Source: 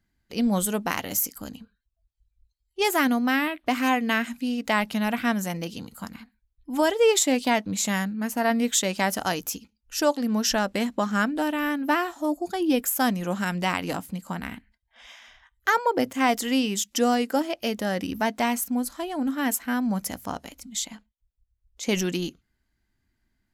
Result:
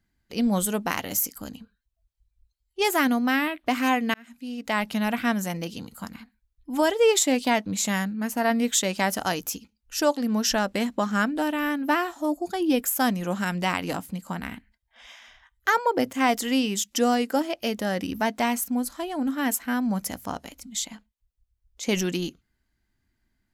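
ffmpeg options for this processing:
ffmpeg -i in.wav -filter_complex "[0:a]asplit=2[link_01][link_02];[link_01]atrim=end=4.14,asetpts=PTS-STARTPTS,afade=type=out:start_time=4.136:duration=0.004:curve=hsin[link_03];[link_02]atrim=start=4.14,asetpts=PTS-STARTPTS,afade=type=in:duration=0.8[link_04];[link_03][link_04]concat=n=2:v=0:a=1" out.wav

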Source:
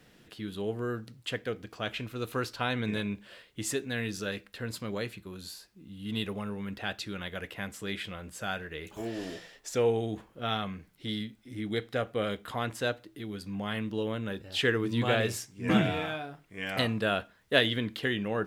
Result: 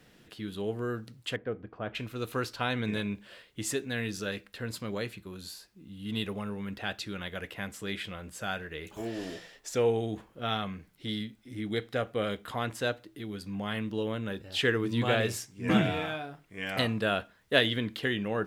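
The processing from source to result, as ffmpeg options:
ffmpeg -i in.wav -filter_complex "[0:a]asettb=1/sr,asplit=3[link_01][link_02][link_03];[link_01]atrim=end=1.364[link_04];[link_02]atrim=start=1.36:end=1.95,asetpts=PTS-STARTPTS,afade=type=in:duration=0.004:curve=qsin,afade=type=out:start_time=0.586:duration=0.004:curve=qsin,lowpass=1300[link_05];[link_03]atrim=start=1.946[link_06];[link_04][link_05]acrossfade=duration=0.004:curve1=hsin:curve2=qsin[link_07];[link_07][link_06]acrossfade=duration=0.004:curve1=qsin:curve2=hsin" out.wav

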